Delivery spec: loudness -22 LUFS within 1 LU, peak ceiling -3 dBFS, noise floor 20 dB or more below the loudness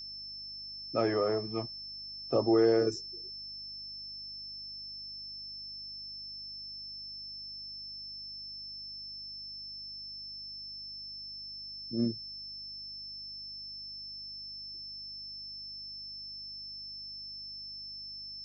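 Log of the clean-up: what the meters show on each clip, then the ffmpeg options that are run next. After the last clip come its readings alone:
hum 50 Hz; highest harmonic 250 Hz; hum level -60 dBFS; steady tone 5.3 kHz; tone level -41 dBFS; loudness -36.5 LUFS; peak level -15.5 dBFS; loudness target -22.0 LUFS
-> -af "bandreject=f=50:t=h:w=4,bandreject=f=100:t=h:w=4,bandreject=f=150:t=h:w=4,bandreject=f=200:t=h:w=4,bandreject=f=250:t=h:w=4"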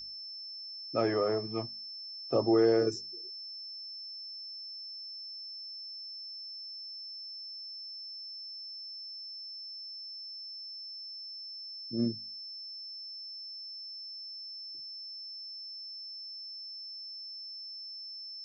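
hum not found; steady tone 5.3 kHz; tone level -41 dBFS
-> -af "bandreject=f=5300:w=30"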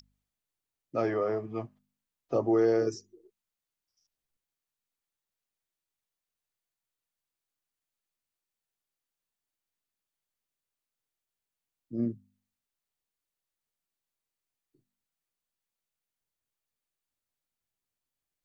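steady tone not found; loudness -30.0 LUFS; peak level -16.0 dBFS; loudness target -22.0 LUFS
-> -af "volume=2.51"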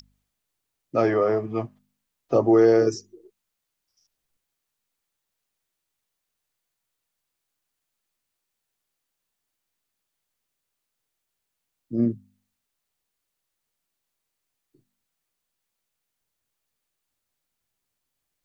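loudness -22.0 LUFS; peak level -8.0 dBFS; noise floor -82 dBFS

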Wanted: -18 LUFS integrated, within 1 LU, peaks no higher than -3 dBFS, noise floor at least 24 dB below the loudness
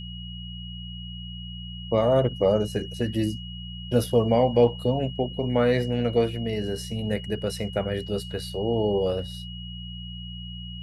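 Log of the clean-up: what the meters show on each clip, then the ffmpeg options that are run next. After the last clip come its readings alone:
hum 60 Hz; highest harmonic 180 Hz; hum level -36 dBFS; steady tone 2.9 kHz; tone level -40 dBFS; loudness -25.0 LUFS; peak level -8.0 dBFS; loudness target -18.0 LUFS
-> -af "bandreject=f=60:t=h:w=4,bandreject=f=120:t=h:w=4,bandreject=f=180:t=h:w=4"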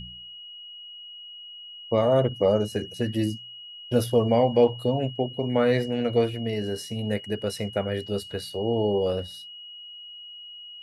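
hum not found; steady tone 2.9 kHz; tone level -40 dBFS
-> -af "bandreject=f=2900:w=30"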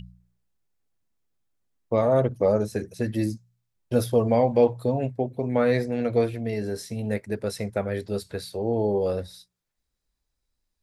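steady tone not found; loudness -25.5 LUFS; peak level -8.5 dBFS; loudness target -18.0 LUFS
-> -af "volume=2.37,alimiter=limit=0.708:level=0:latency=1"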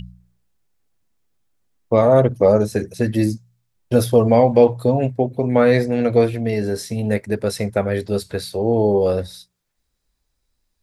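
loudness -18.0 LUFS; peak level -3.0 dBFS; noise floor -73 dBFS

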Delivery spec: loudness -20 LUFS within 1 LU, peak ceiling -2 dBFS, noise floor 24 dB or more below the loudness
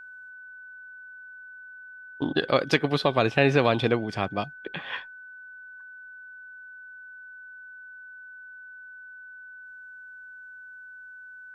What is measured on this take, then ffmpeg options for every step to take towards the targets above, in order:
steady tone 1.5 kHz; tone level -42 dBFS; loudness -25.0 LUFS; peak level -5.5 dBFS; loudness target -20.0 LUFS
-> -af "bandreject=f=1500:w=30"
-af "volume=1.78,alimiter=limit=0.794:level=0:latency=1"

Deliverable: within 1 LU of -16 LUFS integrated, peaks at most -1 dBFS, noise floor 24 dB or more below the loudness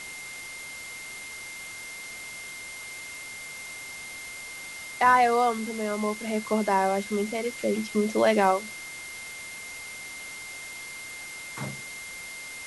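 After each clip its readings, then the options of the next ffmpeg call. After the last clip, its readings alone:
steady tone 2.1 kHz; tone level -39 dBFS; noise floor -40 dBFS; noise floor target -54 dBFS; loudness -29.5 LUFS; peak level -8.5 dBFS; loudness target -16.0 LUFS
-> -af "bandreject=f=2100:w=30"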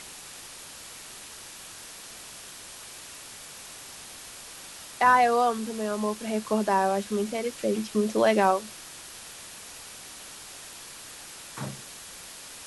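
steady tone not found; noise floor -44 dBFS; noise floor target -50 dBFS
-> -af "afftdn=nr=6:nf=-44"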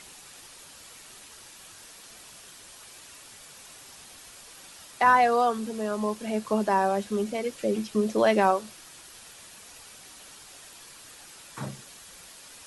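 noise floor -49 dBFS; noise floor target -50 dBFS
-> -af "afftdn=nr=6:nf=-49"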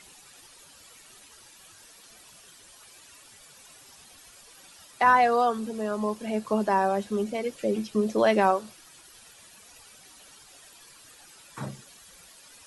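noise floor -53 dBFS; loudness -25.5 LUFS; peak level -8.5 dBFS; loudness target -16.0 LUFS
-> -af "volume=2.99,alimiter=limit=0.891:level=0:latency=1"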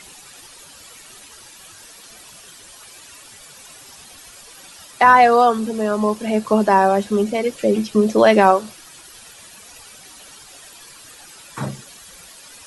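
loudness -16.5 LUFS; peak level -1.0 dBFS; noise floor -43 dBFS

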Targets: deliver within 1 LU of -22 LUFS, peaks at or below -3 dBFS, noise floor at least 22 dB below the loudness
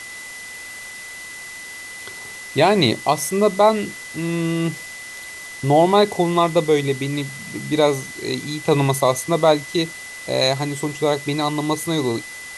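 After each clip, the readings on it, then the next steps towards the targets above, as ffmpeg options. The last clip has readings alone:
steady tone 2 kHz; tone level -34 dBFS; noise floor -35 dBFS; noise floor target -42 dBFS; loudness -19.5 LUFS; peak level -2.5 dBFS; loudness target -22.0 LUFS
-> -af "bandreject=f=2000:w=30"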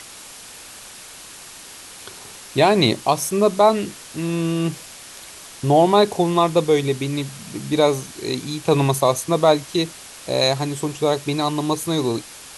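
steady tone not found; noise floor -40 dBFS; noise floor target -42 dBFS
-> -af "afftdn=nr=6:nf=-40"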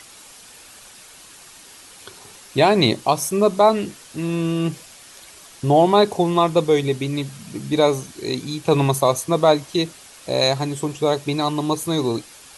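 noise floor -45 dBFS; loudness -20.0 LUFS; peak level -2.5 dBFS; loudness target -22.0 LUFS
-> -af "volume=0.794"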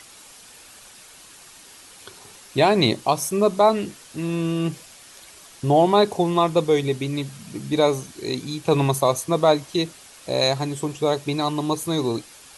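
loudness -22.0 LUFS; peak level -4.5 dBFS; noise floor -47 dBFS

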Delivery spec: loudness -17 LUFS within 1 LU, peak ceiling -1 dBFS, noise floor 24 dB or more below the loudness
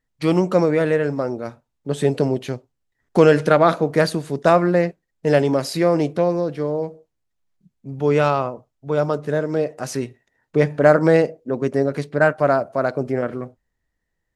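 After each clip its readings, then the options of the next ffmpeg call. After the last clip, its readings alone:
loudness -19.5 LUFS; peak level -1.5 dBFS; loudness target -17.0 LUFS
-> -af "volume=1.33,alimiter=limit=0.891:level=0:latency=1"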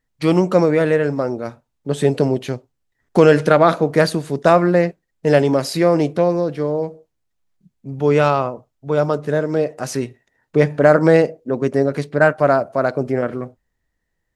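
loudness -17.5 LUFS; peak level -1.0 dBFS; noise floor -74 dBFS

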